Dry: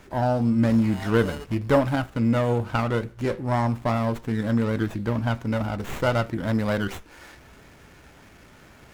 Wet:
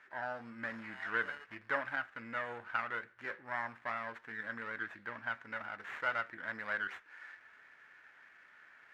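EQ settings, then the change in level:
resonant band-pass 1,700 Hz, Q 3.7
0.0 dB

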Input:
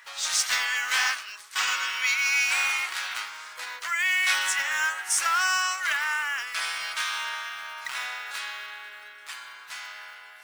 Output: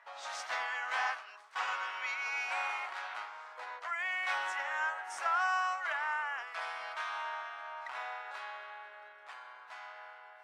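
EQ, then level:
resonant band-pass 700 Hz, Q 2.3
+4.0 dB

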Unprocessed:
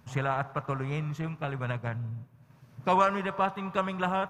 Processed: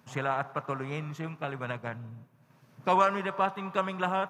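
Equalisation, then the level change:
high-pass filter 180 Hz 12 dB per octave
0.0 dB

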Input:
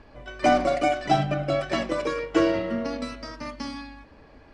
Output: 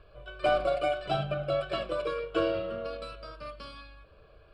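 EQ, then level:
phaser with its sweep stopped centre 1,300 Hz, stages 8
−3.0 dB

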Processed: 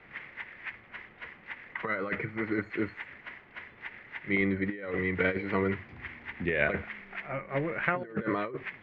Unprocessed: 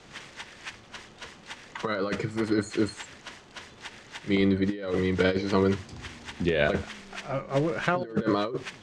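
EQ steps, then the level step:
transistor ladder low-pass 2,300 Hz, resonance 65%
+5.0 dB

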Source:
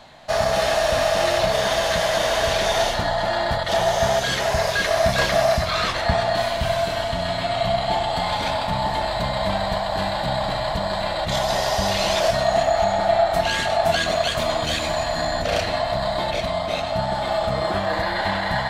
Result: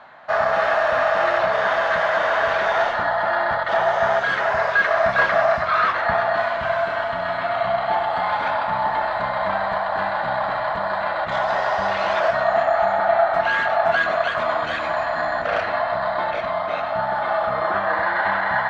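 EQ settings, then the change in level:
low-pass with resonance 1,400 Hz, resonance Q 2.3
spectral tilt +3 dB per octave
low-shelf EQ 87 Hz −5 dB
0.0 dB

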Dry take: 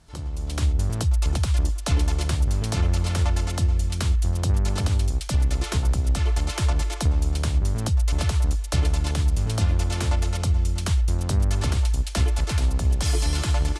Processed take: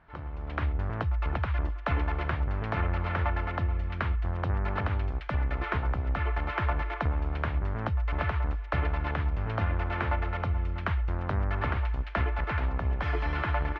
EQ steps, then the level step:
low-pass filter 1,900 Hz 24 dB per octave
tilt shelving filter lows −8 dB, about 670 Hz
0.0 dB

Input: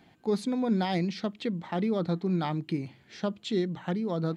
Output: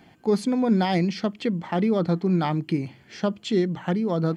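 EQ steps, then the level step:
notch filter 3,800 Hz, Q 6.9
+6.0 dB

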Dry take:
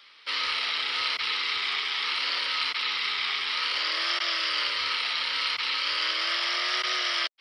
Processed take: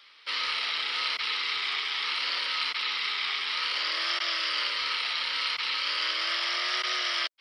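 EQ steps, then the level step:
low-shelf EQ 210 Hz −5.5 dB
−1.5 dB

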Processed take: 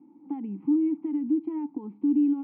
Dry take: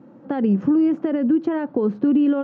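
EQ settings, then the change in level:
dynamic equaliser 470 Hz, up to −6 dB, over −33 dBFS, Q 0.94
formant filter u
high-frequency loss of the air 280 metres
0.0 dB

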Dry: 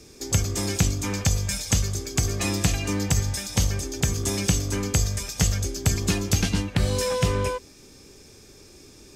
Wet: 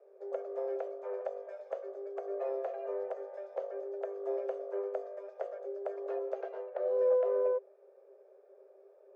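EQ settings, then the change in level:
Chebyshev high-pass with heavy ripple 380 Hz, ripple 9 dB
low-pass with resonance 640 Hz, resonance Q 6.3
−4.5 dB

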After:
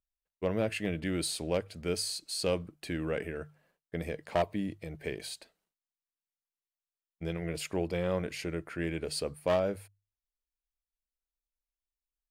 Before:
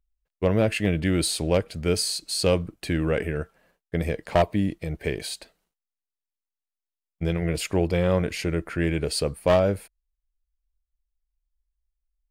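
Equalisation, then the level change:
low-shelf EQ 78 Hz −11.5 dB
mains-hum notches 50/100/150 Hz
−8.0 dB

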